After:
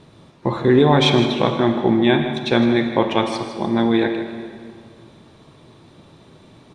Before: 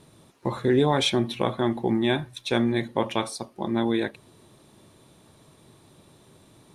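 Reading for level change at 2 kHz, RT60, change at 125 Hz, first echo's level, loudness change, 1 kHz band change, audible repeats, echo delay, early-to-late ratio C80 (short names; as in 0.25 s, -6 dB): +7.5 dB, 2.1 s, +8.0 dB, -11.5 dB, +7.5 dB, +7.5 dB, 1, 0.158 s, 6.5 dB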